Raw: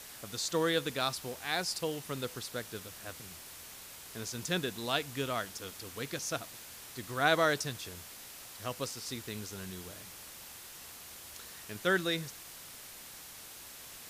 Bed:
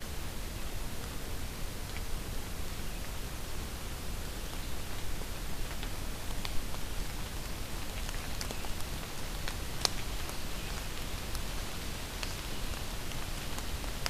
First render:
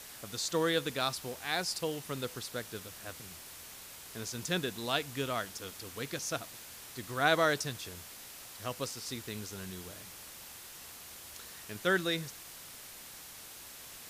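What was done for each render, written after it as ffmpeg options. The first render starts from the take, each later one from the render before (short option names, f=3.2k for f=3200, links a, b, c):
-af anull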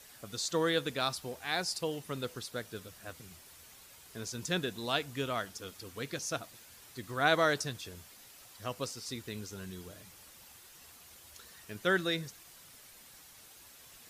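-af "afftdn=nr=8:nf=-49"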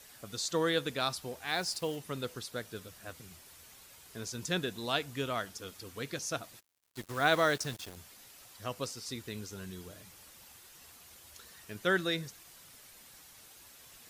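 -filter_complex "[0:a]asplit=3[a][b][c];[a]afade=t=out:st=1.47:d=0.02[d];[b]acrusher=bits=7:mix=0:aa=0.5,afade=t=in:st=1.47:d=0.02,afade=t=out:st=1.95:d=0.02[e];[c]afade=t=in:st=1.95:d=0.02[f];[d][e][f]amix=inputs=3:normalize=0,asplit=3[g][h][i];[g]afade=t=out:st=6.59:d=0.02[j];[h]acrusher=bits=6:mix=0:aa=0.5,afade=t=in:st=6.59:d=0.02,afade=t=out:st=7.95:d=0.02[k];[i]afade=t=in:st=7.95:d=0.02[l];[j][k][l]amix=inputs=3:normalize=0"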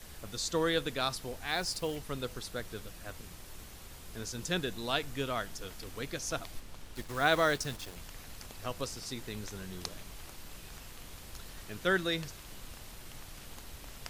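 -filter_complex "[1:a]volume=-11dB[a];[0:a][a]amix=inputs=2:normalize=0"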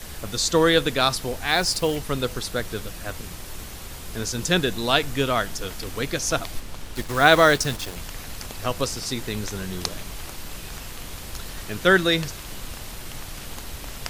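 -af "volume=12dB"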